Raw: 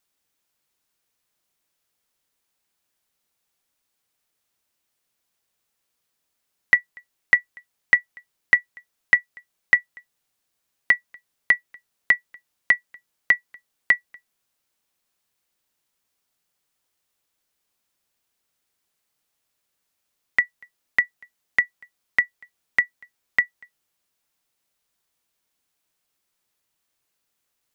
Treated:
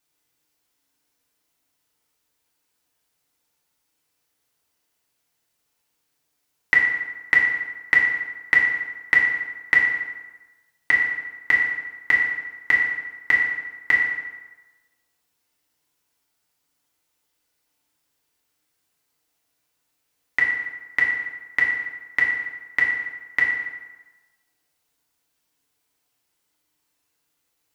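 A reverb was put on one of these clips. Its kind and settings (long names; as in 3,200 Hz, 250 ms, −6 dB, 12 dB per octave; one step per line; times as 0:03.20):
feedback delay network reverb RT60 1.2 s, low-frequency decay 0.95×, high-frequency decay 0.7×, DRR −4 dB
level −2 dB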